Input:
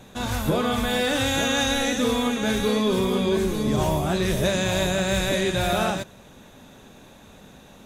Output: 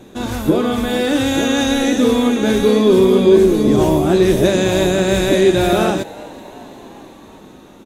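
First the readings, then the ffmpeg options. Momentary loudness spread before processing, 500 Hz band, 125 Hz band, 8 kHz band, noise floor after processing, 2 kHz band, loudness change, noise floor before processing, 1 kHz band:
3 LU, +11.0 dB, +5.5 dB, +3.0 dB, −41 dBFS, +3.0 dB, +8.5 dB, −49 dBFS, +4.5 dB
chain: -filter_complex "[0:a]equalizer=frequency=330:width_type=o:width=0.89:gain=13.5,dynaudnorm=framelen=620:gausssize=5:maxgain=5.5dB,asplit=6[link_01][link_02][link_03][link_04][link_05][link_06];[link_02]adelay=375,afreqshift=110,volume=-22dB[link_07];[link_03]adelay=750,afreqshift=220,volume=-26.4dB[link_08];[link_04]adelay=1125,afreqshift=330,volume=-30.9dB[link_09];[link_05]adelay=1500,afreqshift=440,volume=-35.3dB[link_10];[link_06]adelay=1875,afreqshift=550,volume=-39.7dB[link_11];[link_01][link_07][link_08][link_09][link_10][link_11]amix=inputs=6:normalize=0,volume=1dB"

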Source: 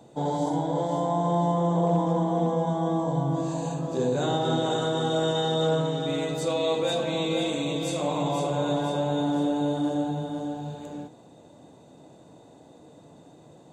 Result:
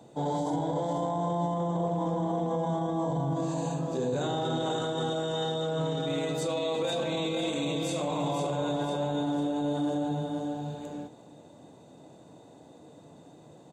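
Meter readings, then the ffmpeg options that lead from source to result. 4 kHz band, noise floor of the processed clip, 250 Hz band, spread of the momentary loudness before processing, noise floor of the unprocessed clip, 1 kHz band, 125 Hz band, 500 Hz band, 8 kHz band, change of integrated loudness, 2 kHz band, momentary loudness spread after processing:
−4.0 dB, −53 dBFS, −4.0 dB, 6 LU, −52 dBFS, −4.0 dB, −4.5 dB, −4.0 dB, −3.0 dB, −4.0 dB, −3.5 dB, 2 LU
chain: -af "highpass=61,alimiter=limit=-21.5dB:level=0:latency=1:release=11,aecho=1:1:358:0.0891,volume=-1dB"

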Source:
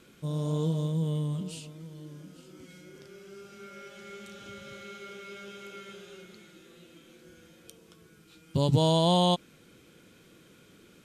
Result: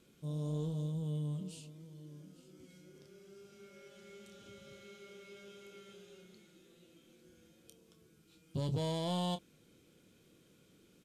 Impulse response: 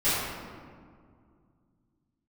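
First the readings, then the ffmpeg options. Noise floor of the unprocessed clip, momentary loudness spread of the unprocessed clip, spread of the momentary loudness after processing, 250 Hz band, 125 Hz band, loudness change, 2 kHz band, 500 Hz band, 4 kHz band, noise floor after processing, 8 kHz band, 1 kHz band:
−58 dBFS, 23 LU, 22 LU, −10.0 dB, −9.0 dB, −12.0 dB, −10.5 dB, −12.0 dB, −13.5 dB, −67 dBFS, −10.0 dB, −13.5 dB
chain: -filter_complex "[0:a]asoftclip=type=tanh:threshold=-21dB,equalizer=frequency=1500:width_type=o:width=1.7:gain=-6.5,asplit=2[link_01][link_02];[link_02]adelay=27,volume=-10.5dB[link_03];[link_01][link_03]amix=inputs=2:normalize=0,aresample=32000,aresample=44100,volume=-8dB"

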